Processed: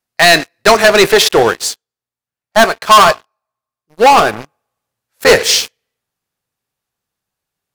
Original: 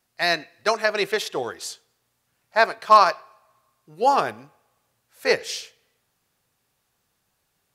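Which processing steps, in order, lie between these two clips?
leveller curve on the samples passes 5
0:01.55–0:04.33: expander for the loud parts 1.5 to 1, over −27 dBFS
level +2.5 dB

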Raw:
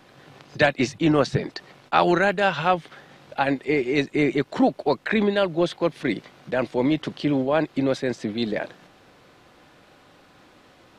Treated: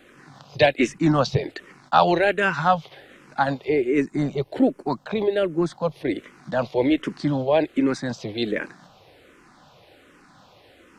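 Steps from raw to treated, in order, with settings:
0:03.69–0:06.15: parametric band 3,000 Hz −7.5 dB 2.5 octaves
frequency shifter mixed with the dry sound −1.3 Hz
level +3.5 dB

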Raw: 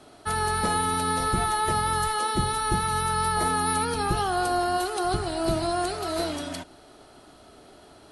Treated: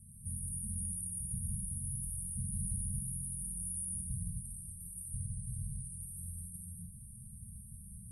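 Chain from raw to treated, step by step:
downward compressor 8 to 1, threshold −40 dBFS, peak gain reduction 19.5 dB
linear-phase brick-wall band-stop 210–8,400 Hz
reverb whose tail is shaped and stops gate 290 ms flat, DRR −6 dB
level +4.5 dB

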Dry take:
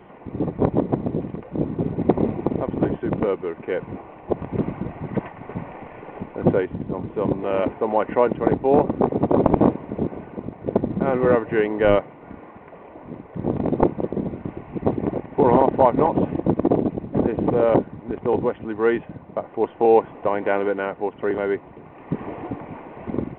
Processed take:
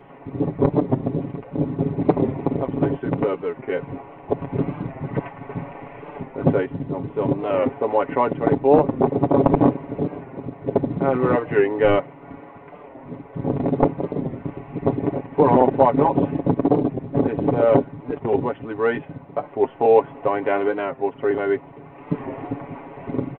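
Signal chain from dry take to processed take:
comb filter 7.2 ms, depth 72%
wow of a warped record 45 rpm, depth 100 cents
level −1 dB

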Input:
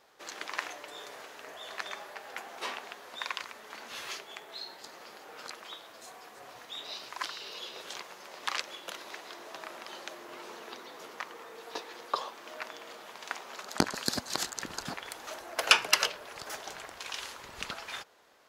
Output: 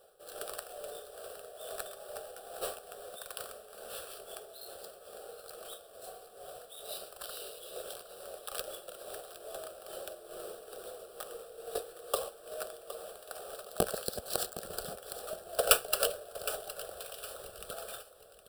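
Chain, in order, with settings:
each half-wave held at its own peak
graphic EQ with 10 bands 125 Hz −7 dB, 500 Hz +5 dB, 2,000 Hz −11 dB, 4,000 Hz −6 dB, 8,000 Hz +12 dB
amplitude tremolo 2.3 Hz, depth 61%
parametric band 1,000 Hz −7.5 dB 0.32 octaves
phaser with its sweep stopped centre 1,400 Hz, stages 8
on a send: repeating echo 764 ms, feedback 33%, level −14 dB

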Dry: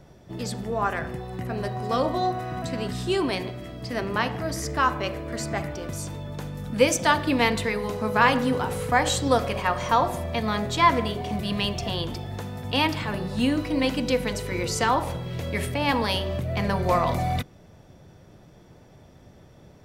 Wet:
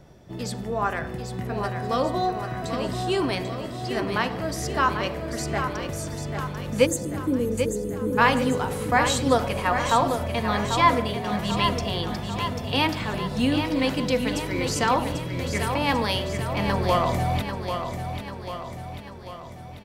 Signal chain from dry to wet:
time-frequency box erased 0:06.86–0:08.18, 580–6,200 Hz
repeating echo 792 ms, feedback 55%, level −7.5 dB

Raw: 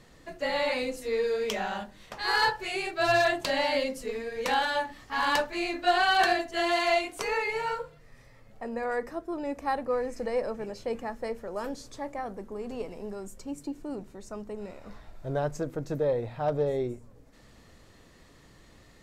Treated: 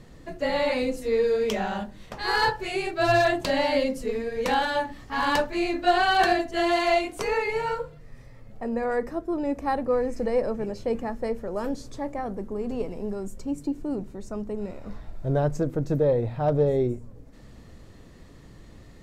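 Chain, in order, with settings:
low-shelf EQ 480 Hz +10 dB

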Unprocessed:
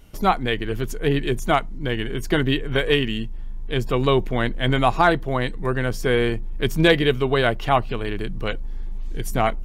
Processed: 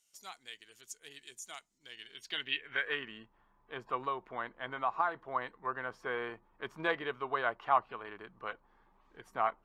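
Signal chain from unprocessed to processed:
0:04.02–0:05.16: downward compressor, threshold −18 dBFS, peak gain reduction 7 dB
band-pass filter sweep 7,100 Hz → 1,100 Hz, 0:01.78–0:03.12
level −4.5 dB

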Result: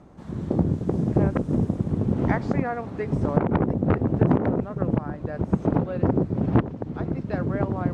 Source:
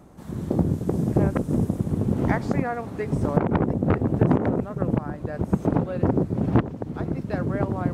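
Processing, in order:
high-frequency loss of the air 89 metres

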